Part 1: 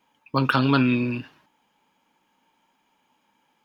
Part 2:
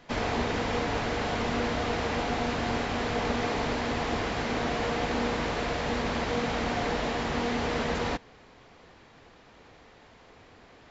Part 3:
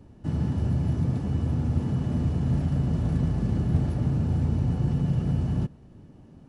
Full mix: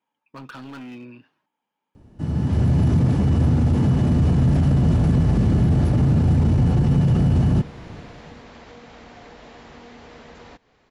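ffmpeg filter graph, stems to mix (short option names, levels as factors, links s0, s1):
-filter_complex "[0:a]highpass=f=180:p=1,highshelf=f=2600:g=-7,volume=11.9,asoftclip=hard,volume=0.0841,volume=0.237[s0];[1:a]acompressor=threshold=0.0224:ratio=6,adelay=2400,volume=0.422[s1];[2:a]dynaudnorm=f=140:g=9:m=3.55,adelay=1950,volume=1.12[s2];[s0][s1][s2]amix=inputs=3:normalize=0,alimiter=limit=0.282:level=0:latency=1:release=13"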